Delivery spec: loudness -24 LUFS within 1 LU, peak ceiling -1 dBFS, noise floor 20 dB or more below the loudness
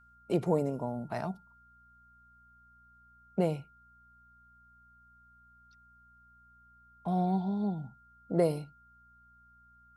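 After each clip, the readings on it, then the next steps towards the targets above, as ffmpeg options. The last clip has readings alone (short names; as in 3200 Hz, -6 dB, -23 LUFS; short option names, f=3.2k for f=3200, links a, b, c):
hum 60 Hz; harmonics up to 240 Hz; hum level -64 dBFS; steady tone 1400 Hz; tone level -59 dBFS; loudness -32.5 LUFS; peak -14.5 dBFS; loudness target -24.0 LUFS
-> -af "bandreject=f=60:t=h:w=4,bandreject=f=120:t=h:w=4,bandreject=f=180:t=h:w=4,bandreject=f=240:t=h:w=4"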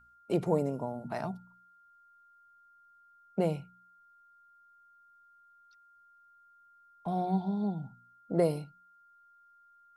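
hum none; steady tone 1400 Hz; tone level -59 dBFS
-> -af "bandreject=f=1.4k:w=30"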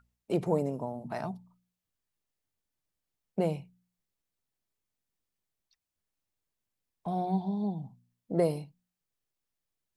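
steady tone none; loudness -33.0 LUFS; peak -14.5 dBFS; loudness target -24.0 LUFS
-> -af "volume=9dB"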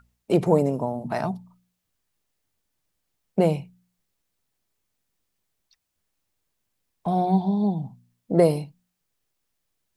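loudness -24.0 LUFS; peak -5.5 dBFS; noise floor -79 dBFS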